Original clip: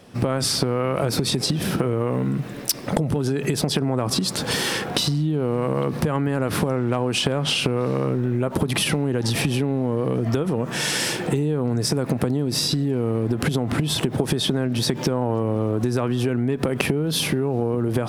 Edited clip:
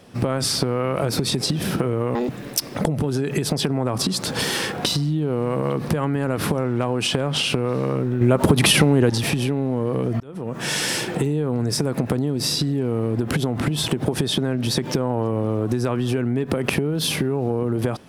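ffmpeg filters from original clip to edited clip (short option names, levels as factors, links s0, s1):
-filter_complex "[0:a]asplit=6[s0][s1][s2][s3][s4][s5];[s0]atrim=end=2.154[s6];[s1]atrim=start=2.15:end=2.41,asetpts=PTS-STARTPTS,asetrate=80703,aresample=44100[s7];[s2]atrim=start=2.406:end=8.332[s8];[s3]atrim=start=8.328:end=9.222,asetpts=PTS-STARTPTS,volume=2.11[s9];[s4]atrim=start=9.218:end=10.32,asetpts=PTS-STARTPTS,afade=t=out:st=1.098:d=0.004:c=hsin[s10];[s5]atrim=start=10.32,asetpts=PTS-STARTPTS,afade=t=in:d=0.47[s11];[s6][s7]acrossfade=d=0.004:c1=hsin:c2=hsin[s12];[s12][s8]acrossfade=d=0.004:c1=hsin:c2=hsin[s13];[s13][s9]acrossfade=d=0.004:c1=hsin:c2=hsin[s14];[s10][s11]concat=n=2:v=0:a=1[s15];[s14][s15]acrossfade=d=0.004:c1=hsin:c2=hsin"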